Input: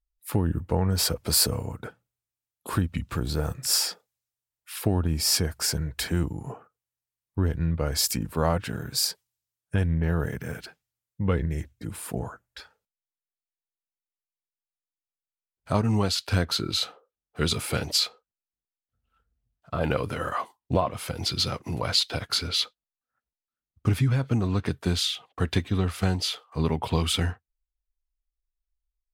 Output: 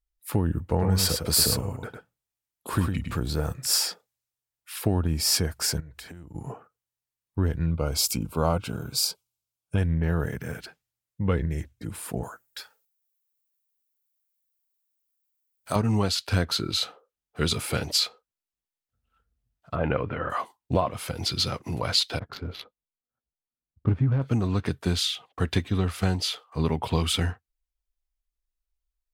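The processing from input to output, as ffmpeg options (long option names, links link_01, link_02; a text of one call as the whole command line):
ffmpeg -i in.wav -filter_complex "[0:a]asettb=1/sr,asplit=3[link_01][link_02][link_03];[link_01]atrim=end=0.614[link_04];[link_02]atrim=start=0.61:end=3.19,asetpts=PTS-STARTPTS,afade=type=in:duration=0.004:curve=qsin,afade=type=out:start_time=2.576:duration=0.004:curve=qsin,aecho=1:1:105:0.531,atrim=end_sample=113778[link_05];[link_03]atrim=start=3.186[link_06];[link_04][link_05]acrossfade=duration=0.004:curve1=hsin:curve2=qsin[link_07];[link_07][link_06]acrossfade=duration=0.004:curve1=qsin:curve2=hsin,asettb=1/sr,asplit=3[link_08][link_09][link_10];[link_08]atrim=end=5.804[link_11];[link_09]atrim=start=5.8:end=6.35,asetpts=PTS-STARTPTS,afade=type=in:duration=0.004:curve=qsin,afade=type=out:start_time=0.546:duration=0.004:curve=qsin,acompressor=threshold=-39dB:ratio=12:attack=3.2:release=140:knee=1:detection=peak[link_12];[link_10]atrim=start=6.346[link_13];[link_11][link_12]acrossfade=duration=0.004:curve1=hsin:curve2=qsin[link_14];[link_14][link_13]acrossfade=duration=0.004:curve1=qsin:curve2=hsin,asettb=1/sr,asplit=3[link_15][link_16][link_17];[link_15]atrim=end=7.664[link_18];[link_16]atrim=start=7.66:end=9.78,asetpts=PTS-STARTPTS,afade=type=in:duration=0.004:curve=qsin,afade=type=out:start_time=2.116:duration=0.004:curve=qsin,asuperstop=centerf=1800:order=4:qfactor=2.9[link_19];[link_17]atrim=start=9.776[link_20];[link_18][link_19]acrossfade=duration=0.004:curve1=hsin:curve2=qsin[link_21];[link_21][link_20]acrossfade=duration=0.004:curve1=qsin:curve2=hsin,asettb=1/sr,asplit=3[link_22][link_23][link_24];[link_22]atrim=end=12.234[link_25];[link_23]atrim=start=12.23:end=15.76,asetpts=PTS-STARTPTS,afade=type=in:duration=0.004:curve=qsin,afade=type=out:start_time=3.526:duration=0.004:curve=qsin,aemphasis=mode=production:type=bsi[link_26];[link_24]atrim=start=15.756[link_27];[link_25][link_26]acrossfade=duration=0.004:curve1=hsin:curve2=qsin[link_28];[link_28][link_27]acrossfade=duration=0.004:curve1=qsin:curve2=hsin,asettb=1/sr,asplit=3[link_29][link_30][link_31];[link_29]atrim=end=19.754[link_32];[link_30]atrim=start=19.75:end=20.3,asetpts=PTS-STARTPTS,afade=type=in:duration=0.004:curve=qsin,afade=type=out:start_time=0.546:duration=0.004:curve=qsin,lowpass=frequency=2600:width=0.5412,lowpass=frequency=2600:width=1.3066[link_33];[link_31]atrim=start=20.296[link_34];[link_32][link_33]acrossfade=duration=0.004:curve1=hsin:curve2=qsin[link_35];[link_35][link_34]acrossfade=duration=0.004:curve1=qsin:curve2=hsin,asettb=1/sr,asplit=3[link_36][link_37][link_38];[link_36]atrim=end=22.194[link_39];[link_37]atrim=start=22.19:end=24.22,asetpts=PTS-STARTPTS,afade=type=in:duration=0.004:curve=qsin,afade=type=out:start_time=2.026:duration=0.004:curve=qsin,adynamicsmooth=sensitivity=1:basefreq=700[link_40];[link_38]atrim=start=24.216[link_41];[link_39][link_40]acrossfade=duration=0.004:curve1=hsin:curve2=qsin[link_42];[link_42][link_41]acrossfade=duration=0.004:curve1=qsin:curve2=hsin" out.wav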